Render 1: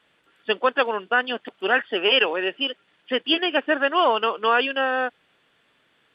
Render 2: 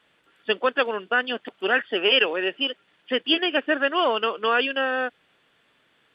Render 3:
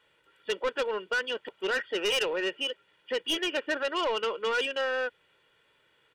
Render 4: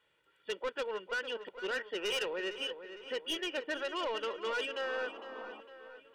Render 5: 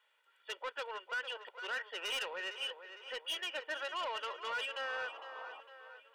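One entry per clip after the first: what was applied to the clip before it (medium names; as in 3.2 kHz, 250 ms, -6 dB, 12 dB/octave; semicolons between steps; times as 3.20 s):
dynamic bell 890 Hz, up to -6 dB, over -33 dBFS, Q 1.9
comb 2.1 ms, depth 59%; saturation -19 dBFS, distortion -10 dB; trim -4.5 dB
filtered feedback delay 456 ms, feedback 55%, low-pass 4 kHz, level -11 dB; painted sound noise, 4.82–5.61 s, 210–1300 Hz -44 dBFS; trim -7 dB
ladder high-pass 550 Hz, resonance 20%; saturation -35.5 dBFS, distortion -18 dB; trim +5 dB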